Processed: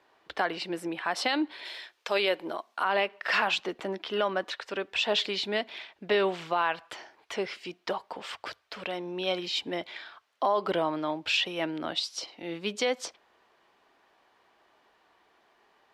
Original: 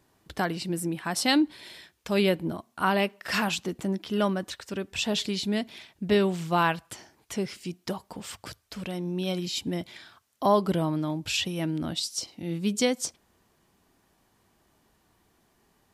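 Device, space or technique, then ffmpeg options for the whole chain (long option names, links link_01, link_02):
DJ mixer with the lows and highs turned down: -filter_complex "[0:a]asettb=1/sr,asplit=3[link_01][link_02][link_03];[link_01]atrim=end=1.654[link_04];[link_02]atrim=start=1.65:end=2.85,asetpts=PTS-STARTPTS,afade=type=in:duration=0.004:curve=qsin,afade=type=out:start_time=1.196:duration=0.004:curve=qsin,bass=frequency=250:gain=-9,treble=frequency=4000:gain=7[link_05];[link_03]atrim=start=2.846[link_06];[link_04][link_05]acrossfade=duration=0.004:curve1=hsin:curve2=qsin[link_07];[link_07][link_06]acrossfade=duration=0.004:curve1=qsin:curve2=hsin,acrossover=split=400 4200:gain=0.0708 1 0.0794[link_08][link_09][link_10];[link_08][link_09][link_10]amix=inputs=3:normalize=0,alimiter=limit=-22dB:level=0:latency=1:release=107,volume=6dB"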